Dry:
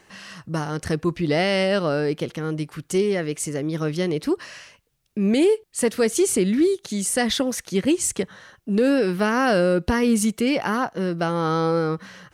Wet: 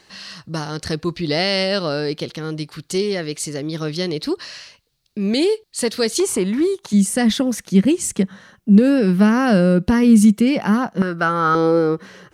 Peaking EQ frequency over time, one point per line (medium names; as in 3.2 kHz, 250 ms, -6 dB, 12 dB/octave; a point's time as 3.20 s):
peaking EQ +13 dB 0.63 oct
4.3 kHz
from 6.20 s 1 kHz
from 6.93 s 200 Hz
from 11.02 s 1.4 kHz
from 11.55 s 390 Hz